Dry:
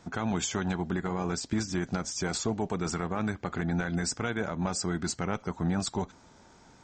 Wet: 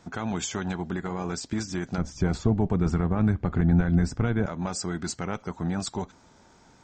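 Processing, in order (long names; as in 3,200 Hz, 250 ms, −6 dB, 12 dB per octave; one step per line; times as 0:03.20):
0:01.98–0:04.46: RIAA equalisation playback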